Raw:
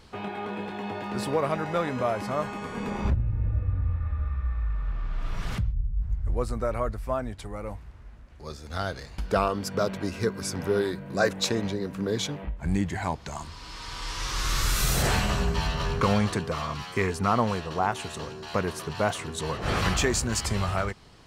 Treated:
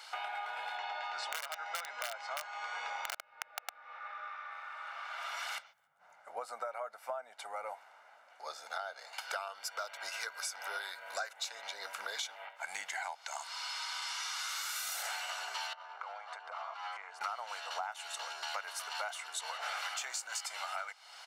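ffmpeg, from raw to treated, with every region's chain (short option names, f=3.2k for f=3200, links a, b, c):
-filter_complex "[0:a]asettb=1/sr,asplit=3[a][b][c];[a]atrim=end=0.774[d];[b]atrim=start=0.77:end=4.52,asetpts=PTS-STARTPTS,afade=t=in:d=0.004:c=qsin,afade=t=out:st=3.746:d=0.004:c=qsin,lowpass=f=6.4k:w=0.5412,lowpass=f=6.4k:w=1.3066,aeval=exprs='(mod(7.5*val(0)+1,2)-1)/7.5':c=same[e];[c]atrim=start=4.516[f];[d][e]acrossfade=d=0.004:c1=hsin:c2=qsin[g];[g][f]acrossfade=d=0.004:c1=qsin:c2=hsin,asettb=1/sr,asplit=3[h][i][j];[h]atrim=end=5.874[k];[i]atrim=start=5.87:end=9.13,asetpts=PTS-STARTPTS,afade=t=in:d=0.004:c=qsin,afade=t=out:st=3.256:d=0.004:c=qsin,highpass=130,tiltshelf=f=890:g=9[l];[j]atrim=start=9.126[m];[k][l]acrossfade=d=0.004:c1=hsin:c2=qsin[n];[n][m]acrossfade=d=0.004:c1=qsin:c2=hsin,asettb=1/sr,asplit=3[o][p][q];[o]atrim=end=15.734[r];[p]atrim=start=15.73:end=17.21,asetpts=PTS-STARTPTS,afade=t=in:d=0.004:c=qsin,afade=t=out:st=1.476:d=0.004:c=qsin,acompressor=threshold=-35dB:ratio=16:attack=3.2:release=140:knee=1:detection=peak,bandpass=f=780:t=q:w=1.1[s];[q]atrim=start=17.206[t];[r][s]acrossfade=d=0.004:c1=hsin:c2=qsin[u];[u][t]acrossfade=d=0.004:c1=qsin:c2=hsin,highpass=f=830:w=0.5412,highpass=f=830:w=1.3066,aecho=1:1:1.4:0.56,acompressor=threshold=-43dB:ratio=8,volume=6dB"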